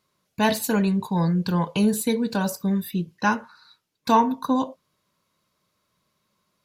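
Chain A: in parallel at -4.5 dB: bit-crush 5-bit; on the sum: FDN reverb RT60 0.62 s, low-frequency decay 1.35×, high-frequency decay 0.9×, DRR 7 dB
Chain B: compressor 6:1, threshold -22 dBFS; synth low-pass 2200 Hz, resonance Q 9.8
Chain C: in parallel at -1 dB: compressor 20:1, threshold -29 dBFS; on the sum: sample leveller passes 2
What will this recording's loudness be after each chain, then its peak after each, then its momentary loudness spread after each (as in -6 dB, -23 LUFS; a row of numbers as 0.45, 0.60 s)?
-19.5, -26.5, -16.0 LUFS; -2.0, -9.5, -6.0 dBFS; 11, 6, 5 LU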